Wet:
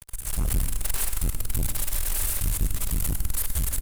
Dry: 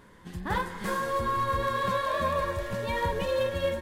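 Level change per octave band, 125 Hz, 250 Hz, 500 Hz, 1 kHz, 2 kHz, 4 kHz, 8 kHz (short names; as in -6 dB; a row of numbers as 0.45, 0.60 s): +6.0, -2.0, -17.5, -17.0, -8.5, +0.5, +20.0 dB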